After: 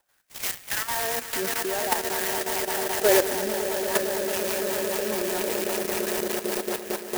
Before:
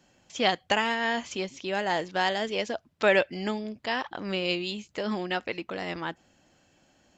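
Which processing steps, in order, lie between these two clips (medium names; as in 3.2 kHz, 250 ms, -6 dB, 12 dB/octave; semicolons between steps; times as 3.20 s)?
LFO high-pass sine 0.52 Hz 280–2400 Hz; echo with a slow build-up 113 ms, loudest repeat 8, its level -9 dB; rotary cabinet horn 5 Hz; level held to a coarse grid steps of 10 dB; sampling jitter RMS 0.095 ms; trim +3 dB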